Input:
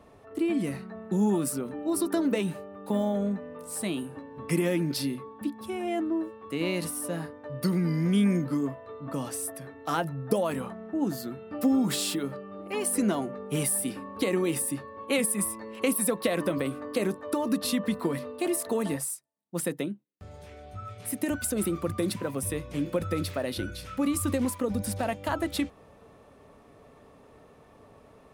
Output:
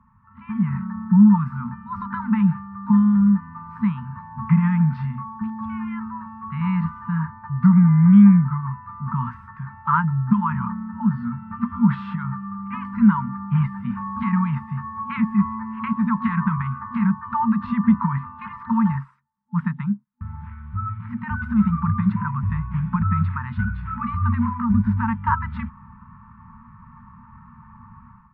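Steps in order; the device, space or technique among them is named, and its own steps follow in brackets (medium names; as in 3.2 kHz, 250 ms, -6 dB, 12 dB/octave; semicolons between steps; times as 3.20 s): FFT band-reject 240–870 Hz; action camera in a waterproof case (low-pass 1.4 kHz 24 dB/octave; level rider gain up to 14 dB; AAC 96 kbps 22.05 kHz)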